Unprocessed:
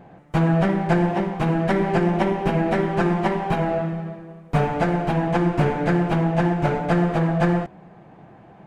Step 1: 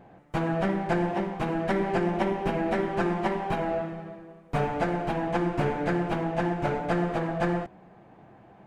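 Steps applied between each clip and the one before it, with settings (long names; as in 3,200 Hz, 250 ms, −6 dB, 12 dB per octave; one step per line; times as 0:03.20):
parametric band 160 Hz −9 dB 0.21 octaves
level −5 dB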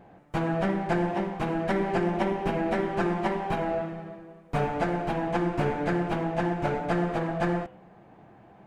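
hum removal 128.1 Hz, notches 30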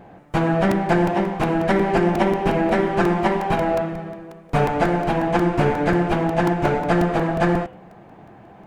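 regular buffer underruns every 0.18 s, samples 128, repeat, from 0:00.71
level +8 dB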